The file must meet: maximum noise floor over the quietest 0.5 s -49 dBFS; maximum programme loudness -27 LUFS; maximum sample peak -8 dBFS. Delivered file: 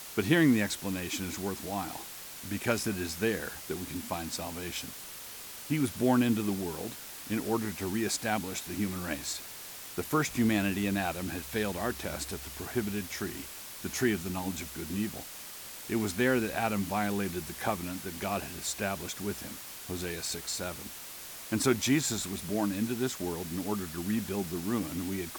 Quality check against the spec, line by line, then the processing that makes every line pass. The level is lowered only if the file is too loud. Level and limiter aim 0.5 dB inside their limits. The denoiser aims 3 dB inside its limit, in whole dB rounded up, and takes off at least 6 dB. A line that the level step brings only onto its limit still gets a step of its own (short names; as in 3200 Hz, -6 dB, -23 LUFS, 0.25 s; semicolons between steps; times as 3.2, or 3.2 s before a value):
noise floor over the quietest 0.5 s -45 dBFS: fail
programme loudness -32.5 LUFS: OK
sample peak -12.0 dBFS: OK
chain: denoiser 7 dB, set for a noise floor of -45 dBFS